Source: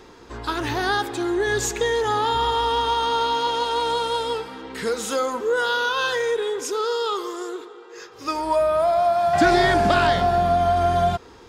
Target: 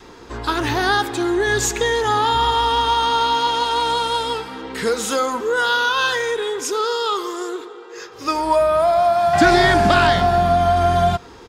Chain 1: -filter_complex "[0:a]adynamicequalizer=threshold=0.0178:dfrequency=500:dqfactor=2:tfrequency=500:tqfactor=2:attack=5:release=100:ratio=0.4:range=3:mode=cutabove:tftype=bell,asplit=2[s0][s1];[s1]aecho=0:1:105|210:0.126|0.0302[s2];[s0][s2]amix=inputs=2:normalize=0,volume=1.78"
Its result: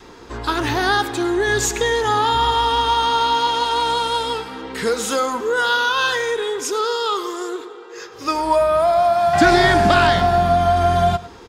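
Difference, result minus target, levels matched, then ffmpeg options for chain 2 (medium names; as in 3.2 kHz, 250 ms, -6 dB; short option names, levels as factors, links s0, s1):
echo-to-direct +10.5 dB
-filter_complex "[0:a]adynamicequalizer=threshold=0.0178:dfrequency=500:dqfactor=2:tfrequency=500:tqfactor=2:attack=5:release=100:ratio=0.4:range=3:mode=cutabove:tftype=bell,asplit=2[s0][s1];[s1]aecho=0:1:105:0.0398[s2];[s0][s2]amix=inputs=2:normalize=0,volume=1.78"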